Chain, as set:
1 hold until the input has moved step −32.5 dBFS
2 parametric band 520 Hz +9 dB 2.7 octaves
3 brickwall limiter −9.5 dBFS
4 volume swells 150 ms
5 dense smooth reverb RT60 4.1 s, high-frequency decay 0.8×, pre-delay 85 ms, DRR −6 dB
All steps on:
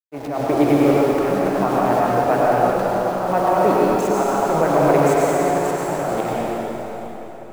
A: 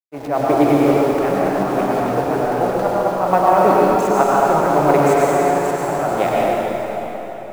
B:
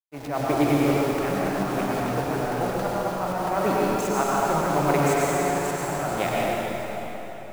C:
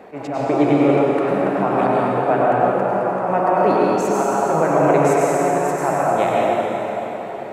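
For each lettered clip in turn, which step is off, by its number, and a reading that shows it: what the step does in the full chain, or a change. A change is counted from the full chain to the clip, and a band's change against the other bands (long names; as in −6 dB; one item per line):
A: 3, average gain reduction 1.5 dB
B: 2, 500 Hz band −5.0 dB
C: 1, distortion level −14 dB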